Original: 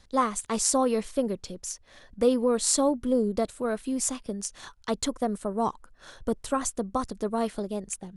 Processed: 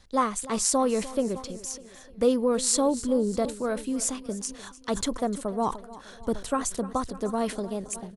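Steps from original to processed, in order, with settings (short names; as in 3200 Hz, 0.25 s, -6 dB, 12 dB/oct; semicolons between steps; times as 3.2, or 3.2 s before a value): on a send: feedback echo 0.301 s, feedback 53%, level -18 dB; on the sum: sustainer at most 140 dB/s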